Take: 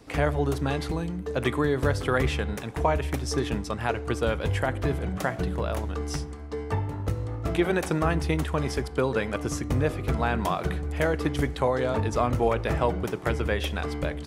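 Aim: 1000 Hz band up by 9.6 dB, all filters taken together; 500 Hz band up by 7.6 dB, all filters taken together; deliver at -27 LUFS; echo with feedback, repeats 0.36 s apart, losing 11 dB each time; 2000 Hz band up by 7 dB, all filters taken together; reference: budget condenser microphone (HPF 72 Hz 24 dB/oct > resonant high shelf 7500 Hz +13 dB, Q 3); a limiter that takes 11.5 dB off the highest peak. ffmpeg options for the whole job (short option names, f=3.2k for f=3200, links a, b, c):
-af "equalizer=f=500:t=o:g=6.5,equalizer=f=1k:t=o:g=9,equalizer=f=2k:t=o:g=6,alimiter=limit=-13.5dB:level=0:latency=1,highpass=f=72:w=0.5412,highpass=f=72:w=1.3066,highshelf=f=7.5k:t=q:w=3:g=13,aecho=1:1:360|720|1080:0.282|0.0789|0.0221,volume=-2dB"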